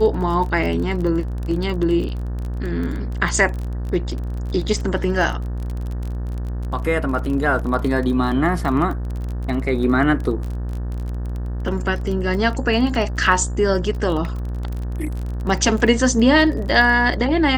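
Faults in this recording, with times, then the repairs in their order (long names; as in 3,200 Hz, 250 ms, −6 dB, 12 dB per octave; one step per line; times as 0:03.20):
mains buzz 60 Hz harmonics 31 −25 dBFS
surface crackle 23 per second −26 dBFS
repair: click removal
hum removal 60 Hz, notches 31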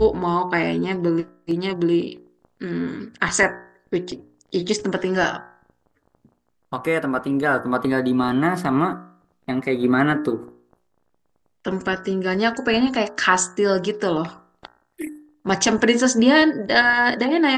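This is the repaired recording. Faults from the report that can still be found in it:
none of them is left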